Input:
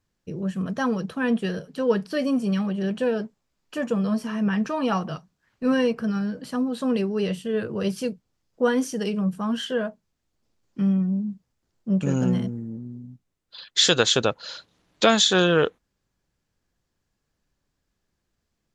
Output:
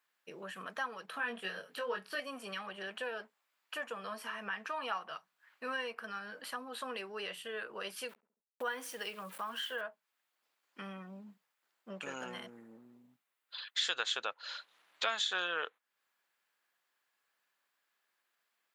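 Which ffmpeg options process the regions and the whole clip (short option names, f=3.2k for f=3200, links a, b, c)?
-filter_complex "[0:a]asettb=1/sr,asplit=3[a][b][c];[a]atrim=end=1.114[d];[b]atrim=start=1.11:end=2.2,asetpts=PTS-STARTPTS,afade=t=in:d=0.004:c=qsin,afade=t=out:st=1.086:d=0.004:c=qsin,lowshelf=f=170:g=8,asplit=2[e][f];[f]adelay=21,volume=-2dB[g];[e][g]amix=inputs=2:normalize=0,atrim=end_sample=48069[h];[c]atrim=start=2.196[i];[d][h]acrossfade=d=0.004:c1=hsin:c2=qsin[j];[j][i]acrossfade=d=0.004:c1=qsin:c2=hsin,asettb=1/sr,asplit=3[k][l][m];[k]atrim=end=8.094[n];[l]atrim=start=8.09:end=9.81,asetpts=PTS-STARTPTS,afade=t=in:d=0.004:c=qsin,afade=t=out:st=1.716:d=0.004:c=qsin,aeval=exprs='val(0)*gte(abs(val(0)),0.00794)':c=same,asplit=2[o][p];[p]adelay=69,lowpass=f=1.2k:p=1,volume=-21.5dB,asplit=2[q][r];[r]adelay=69,lowpass=f=1.2k:p=1,volume=0.5,asplit=2[s][t];[t]adelay=69,lowpass=f=1.2k:p=1,volume=0.5,asplit=2[u][v];[v]adelay=69,lowpass=f=1.2k:p=1,volume=0.5[w];[o][q][s][u][w]amix=inputs=5:normalize=0,atrim=end_sample=75852[x];[m]atrim=start=9.806[y];[n][x]acrossfade=d=0.004:c1=hsin:c2=qsin[z];[z][y]acrossfade=d=0.004:c1=qsin:c2=hsin,highpass=1.2k,equalizer=f=6k:t=o:w=1.3:g=-12.5,acompressor=threshold=-50dB:ratio=2,volume=6.5dB"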